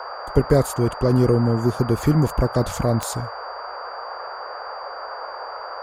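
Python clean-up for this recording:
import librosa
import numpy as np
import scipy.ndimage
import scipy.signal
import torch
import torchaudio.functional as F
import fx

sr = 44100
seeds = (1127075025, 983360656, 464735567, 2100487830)

y = fx.fix_declick_ar(x, sr, threshold=10.0)
y = fx.notch(y, sr, hz=4700.0, q=30.0)
y = fx.noise_reduce(y, sr, print_start_s=5.25, print_end_s=5.75, reduce_db=30.0)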